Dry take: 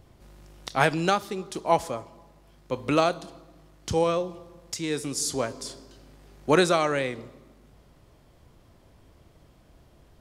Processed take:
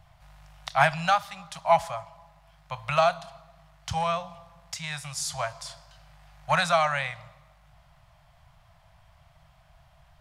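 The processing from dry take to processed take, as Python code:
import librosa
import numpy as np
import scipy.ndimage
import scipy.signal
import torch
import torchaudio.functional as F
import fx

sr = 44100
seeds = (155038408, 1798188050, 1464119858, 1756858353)

p1 = np.clip(x, -10.0 ** (-15.5 / 20.0), 10.0 ** (-15.5 / 20.0))
p2 = x + (p1 * 10.0 ** (-5.0 / 20.0))
p3 = scipy.signal.sosfilt(scipy.signal.ellip(3, 1.0, 40, [160.0, 670.0], 'bandstop', fs=sr, output='sos'), p2)
y = fx.bass_treble(p3, sr, bass_db=-5, treble_db=-8)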